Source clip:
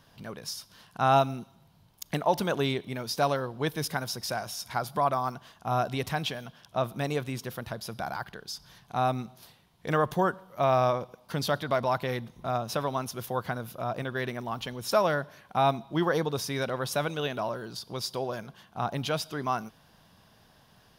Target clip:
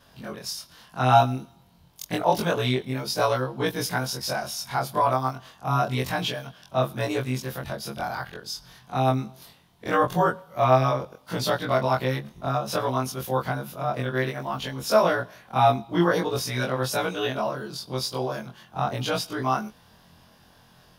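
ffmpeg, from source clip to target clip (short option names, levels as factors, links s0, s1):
-af "afftfilt=real='re':imag='-im':win_size=2048:overlap=0.75,volume=2.66"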